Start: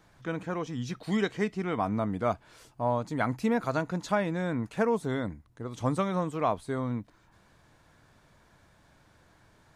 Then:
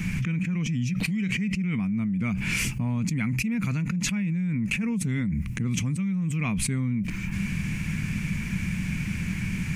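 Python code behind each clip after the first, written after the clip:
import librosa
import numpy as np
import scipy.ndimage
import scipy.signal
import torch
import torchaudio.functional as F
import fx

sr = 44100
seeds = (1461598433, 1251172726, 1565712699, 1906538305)

y = fx.curve_eq(x, sr, hz=(120.0, 190.0, 290.0, 630.0, 1600.0, 2400.0, 3700.0, 6000.0), db=(0, 11, -9, -26, -12, 8, -14, -5))
y = fx.env_flatten(y, sr, amount_pct=100)
y = F.gain(torch.from_numpy(y), -8.5).numpy()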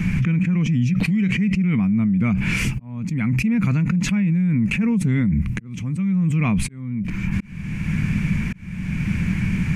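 y = fx.high_shelf(x, sr, hz=3100.0, db=-12.0)
y = fx.auto_swell(y, sr, attack_ms=576.0)
y = F.gain(torch.from_numpy(y), 8.0).numpy()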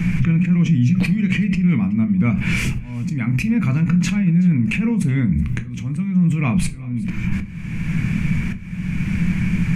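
y = x + 10.0 ** (-23.0 / 20.0) * np.pad(x, (int(375 * sr / 1000.0), 0))[:len(x)]
y = fx.room_shoebox(y, sr, seeds[0], volume_m3=180.0, walls='furnished', distance_m=0.63)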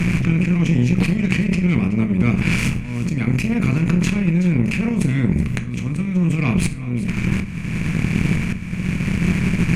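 y = fx.bin_compress(x, sr, power=0.6)
y = fx.cheby_harmonics(y, sr, harmonics=(2, 7), levels_db=(-9, -28), full_scale_db=-2.5)
y = F.gain(torch.from_numpy(y), -3.0).numpy()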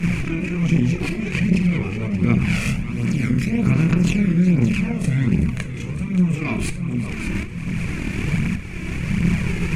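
y = fx.echo_feedback(x, sr, ms=577, feedback_pct=36, wet_db=-11.0)
y = fx.chorus_voices(y, sr, voices=2, hz=0.65, base_ms=29, depth_ms=1.7, mix_pct=70)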